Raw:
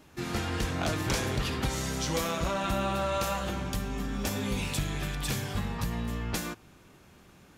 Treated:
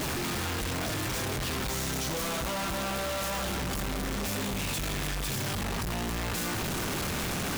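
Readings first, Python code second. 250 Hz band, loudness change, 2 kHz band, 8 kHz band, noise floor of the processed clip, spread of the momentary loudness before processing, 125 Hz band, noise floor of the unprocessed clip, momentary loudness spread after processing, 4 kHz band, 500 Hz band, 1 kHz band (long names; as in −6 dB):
−0.5 dB, +0.5 dB, +2.5 dB, +4.0 dB, −32 dBFS, 5 LU, −1.5 dB, −56 dBFS, 1 LU, +2.5 dB, −1.0 dB, 0.0 dB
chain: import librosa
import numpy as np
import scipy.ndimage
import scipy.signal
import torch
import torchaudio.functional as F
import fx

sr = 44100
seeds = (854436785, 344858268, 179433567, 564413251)

y = np.sign(x) * np.sqrt(np.mean(np.square(x)))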